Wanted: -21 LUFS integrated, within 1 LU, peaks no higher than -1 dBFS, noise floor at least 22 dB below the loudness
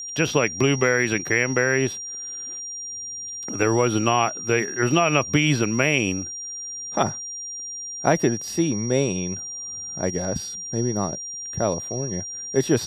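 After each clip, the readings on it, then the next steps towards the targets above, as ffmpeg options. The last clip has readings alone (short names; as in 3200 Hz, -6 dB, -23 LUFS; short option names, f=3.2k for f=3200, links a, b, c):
steady tone 5700 Hz; tone level -31 dBFS; loudness -23.5 LUFS; peak -4.0 dBFS; loudness target -21.0 LUFS
-> -af "bandreject=f=5.7k:w=30"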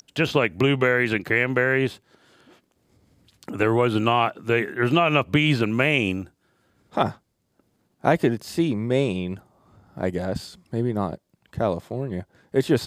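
steady tone none; loudness -23.0 LUFS; peak -4.5 dBFS; loudness target -21.0 LUFS
-> -af "volume=2dB"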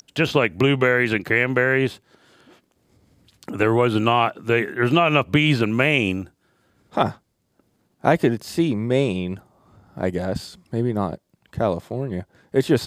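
loudness -21.0 LUFS; peak -2.5 dBFS; noise floor -69 dBFS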